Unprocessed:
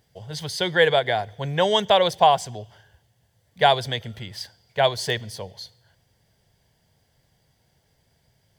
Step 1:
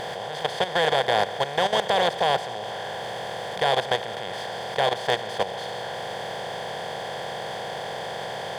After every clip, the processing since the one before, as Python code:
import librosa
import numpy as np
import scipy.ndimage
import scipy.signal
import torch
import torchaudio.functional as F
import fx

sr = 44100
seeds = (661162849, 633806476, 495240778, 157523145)

y = fx.bin_compress(x, sr, power=0.2)
y = fx.level_steps(y, sr, step_db=12)
y = F.gain(torch.from_numpy(y), -8.5).numpy()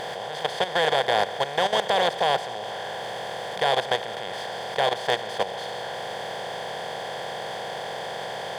y = fx.low_shelf(x, sr, hz=150.0, db=-6.5)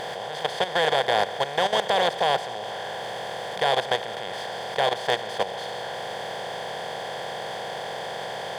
y = x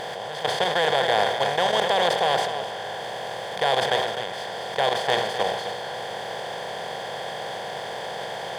y = x + 10.0 ** (-10.0 / 20.0) * np.pad(x, (int(257 * sr / 1000.0), 0))[:len(x)]
y = fx.sustainer(y, sr, db_per_s=51.0)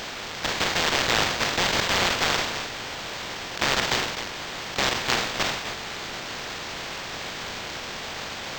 y = fx.spec_flatten(x, sr, power=0.15)
y = np.interp(np.arange(len(y)), np.arange(len(y))[::4], y[::4])